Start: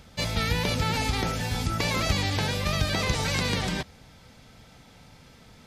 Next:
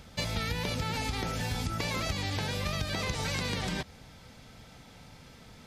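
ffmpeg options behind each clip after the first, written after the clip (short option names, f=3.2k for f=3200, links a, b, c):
-af "acompressor=threshold=-29dB:ratio=6"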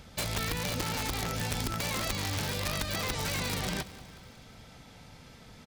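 -af "aeval=exprs='(mod(16.8*val(0)+1,2)-1)/16.8':c=same,aecho=1:1:184|368|552|736|920:0.133|0.0747|0.0418|0.0234|0.0131"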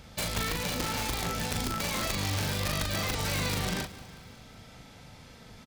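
-filter_complex "[0:a]asplit=2[a][b];[b]adelay=40,volume=-4dB[c];[a][c]amix=inputs=2:normalize=0"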